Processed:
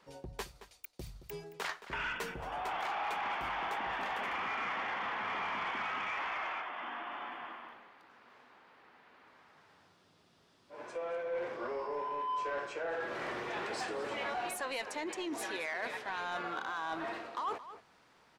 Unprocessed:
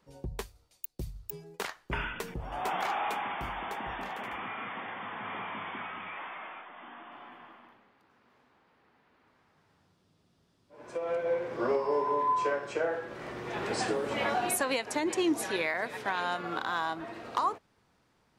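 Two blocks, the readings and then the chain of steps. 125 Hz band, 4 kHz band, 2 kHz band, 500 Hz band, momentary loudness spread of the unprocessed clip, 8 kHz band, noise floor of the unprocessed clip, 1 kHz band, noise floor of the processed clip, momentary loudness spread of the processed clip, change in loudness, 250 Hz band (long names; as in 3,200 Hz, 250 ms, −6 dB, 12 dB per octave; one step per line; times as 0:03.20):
−9.0 dB, −3.0 dB, −1.5 dB, −7.0 dB, 15 LU, −8.5 dB, −70 dBFS, −3.5 dB, −67 dBFS, 11 LU, −4.5 dB, −9.5 dB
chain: reversed playback
downward compressor 10 to 1, threshold −38 dBFS, peak gain reduction 14.5 dB
reversed playback
mid-hump overdrive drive 13 dB, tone 4,700 Hz, clips at −27 dBFS
slap from a distant wall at 38 metres, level −13 dB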